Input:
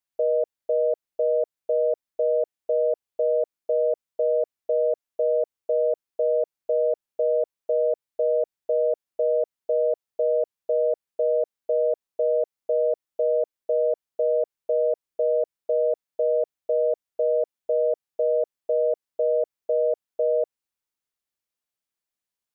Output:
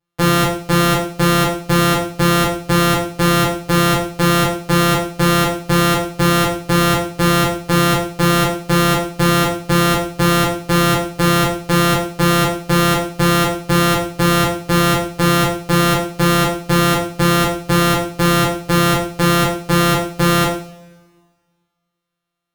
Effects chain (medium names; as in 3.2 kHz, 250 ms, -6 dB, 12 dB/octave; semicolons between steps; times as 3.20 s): sorted samples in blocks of 256 samples; two-slope reverb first 0.51 s, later 1.8 s, from -24 dB, DRR -7 dB; trim +3 dB